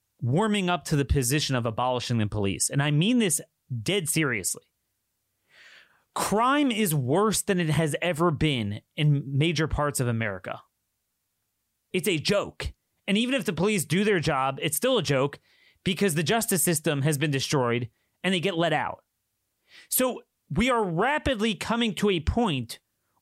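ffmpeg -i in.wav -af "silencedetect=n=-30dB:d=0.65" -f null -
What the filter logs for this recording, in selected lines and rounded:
silence_start: 4.57
silence_end: 6.16 | silence_duration: 1.59
silence_start: 10.55
silence_end: 11.94 | silence_duration: 1.39
silence_start: 18.94
silence_end: 19.92 | silence_duration: 0.98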